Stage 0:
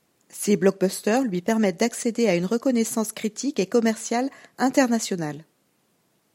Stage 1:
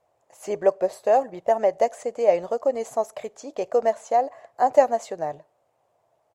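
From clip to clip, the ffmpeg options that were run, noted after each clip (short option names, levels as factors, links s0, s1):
-af "firequalizer=gain_entry='entry(110,0);entry(190,-19);entry(620,12);entry(1400,-5);entry(4300,-13);entry(7200,-10);entry(11000,-16)':delay=0.05:min_phase=1,volume=0.794"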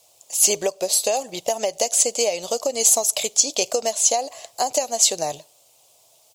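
-af "acompressor=threshold=0.0708:ratio=10,aexciter=amount=12.1:drive=7:freq=2700,volume=1.5"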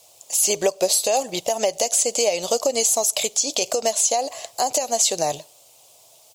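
-af "alimiter=limit=0.224:level=0:latency=1:release=126,volume=1.68"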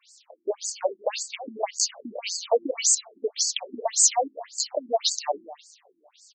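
-af "aecho=1:1:258|516|774:0.126|0.0428|0.0146,afftfilt=real='re*between(b*sr/1024,250*pow(6300/250,0.5+0.5*sin(2*PI*1.8*pts/sr))/1.41,250*pow(6300/250,0.5+0.5*sin(2*PI*1.8*pts/sr))*1.41)':imag='im*between(b*sr/1024,250*pow(6300/250,0.5+0.5*sin(2*PI*1.8*pts/sr))/1.41,250*pow(6300/250,0.5+0.5*sin(2*PI*1.8*pts/sr))*1.41)':win_size=1024:overlap=0.75,volume=1.33"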